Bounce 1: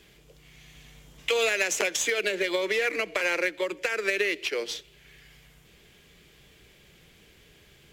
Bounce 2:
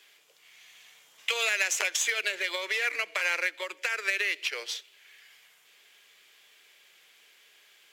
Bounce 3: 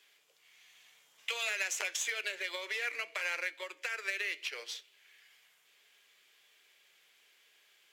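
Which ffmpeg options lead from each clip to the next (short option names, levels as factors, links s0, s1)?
-af "highpass=920"
-af "acontrast=45,flanger=delay=7:depth=1.5:regen=-79:speed=0.86:shape=sinusoidal,volume=0.376"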